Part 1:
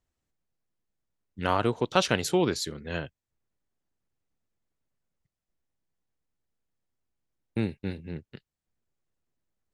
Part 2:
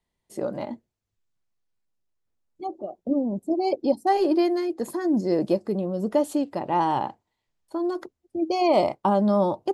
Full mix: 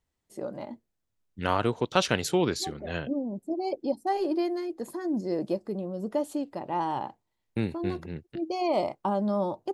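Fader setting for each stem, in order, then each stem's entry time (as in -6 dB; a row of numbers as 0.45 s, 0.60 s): -0.5 dB, -6.5 dB; 0.00 s, 0.00 s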